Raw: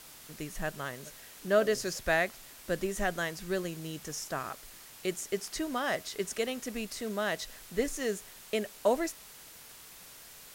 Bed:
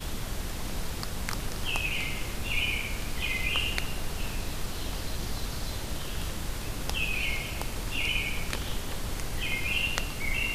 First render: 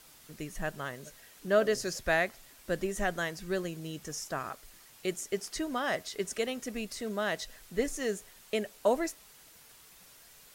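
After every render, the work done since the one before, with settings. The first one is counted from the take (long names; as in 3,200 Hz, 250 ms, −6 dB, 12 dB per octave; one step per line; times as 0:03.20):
broadband denoise 6 dB, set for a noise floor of −51 dBFS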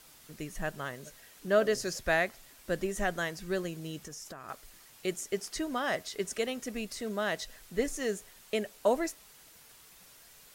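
0:03.98–0:04.49: downward compressor 16 to 1, threshold −40 dBFS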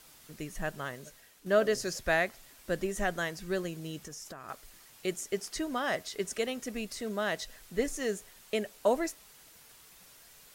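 0:00.95–0:01.46: fade out, to −7.5 dB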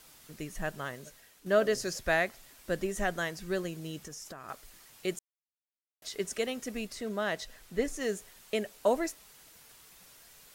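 0:05.19–0:06.02: silence
0:06.87–0:08.01: high-shelf EQ 4,500 Hz −4 dB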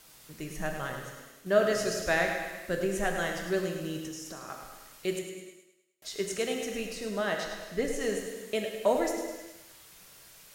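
on a send: feedback echo with a high-pass in the loop 104 ms, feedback 48%, high-pass 180 Hz, level −9 dB
on the sum: reverb whose tail is shaped and stops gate 470 ms falling, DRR 3 dB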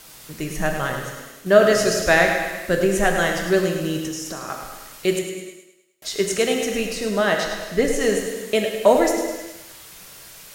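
level +11 dB
brickwall limiter −1 dBFS, peak gain reduction 1.5 dB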